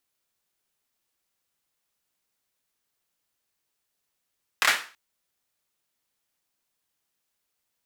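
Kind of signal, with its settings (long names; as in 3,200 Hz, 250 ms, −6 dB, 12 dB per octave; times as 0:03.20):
synth clap length 0.33 s, bursts 3, apart 27 ms, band 1,700 Hz, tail 0.37 s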